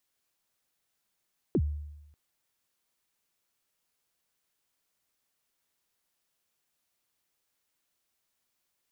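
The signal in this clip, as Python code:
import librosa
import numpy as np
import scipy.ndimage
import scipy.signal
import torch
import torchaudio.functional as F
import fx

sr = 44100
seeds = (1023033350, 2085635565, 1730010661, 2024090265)

y = fx.drum_kick(sr, seeds[0], length_s=0.59, level_db=-20.5, start_hz=440.0, end_hz=74.0, sweep_ms=58.0, decay_s=0.97, click=False)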